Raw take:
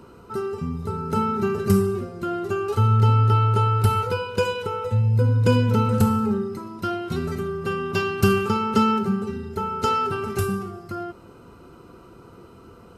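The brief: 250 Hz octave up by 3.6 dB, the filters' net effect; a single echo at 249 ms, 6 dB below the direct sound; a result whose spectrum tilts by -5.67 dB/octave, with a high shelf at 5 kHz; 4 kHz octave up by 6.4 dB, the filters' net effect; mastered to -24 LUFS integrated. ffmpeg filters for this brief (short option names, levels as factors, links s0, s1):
-af "equalizer=f=250:t=o:g=4.5,equalizer=f=4000:t=o:g=5.5,highshelf=f=5000:g=8,aecho=1:1:249:0.501,volume=0.668"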